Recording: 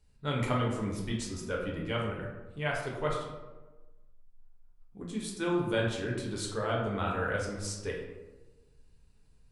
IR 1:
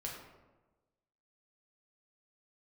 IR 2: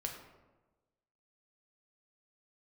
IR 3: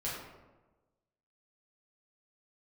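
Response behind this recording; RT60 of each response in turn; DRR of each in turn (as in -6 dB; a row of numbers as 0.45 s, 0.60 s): 1; 1.2 s, 1.2 s, 1.2 s; -3.0 dB, 1.5 dB, -8.0 dB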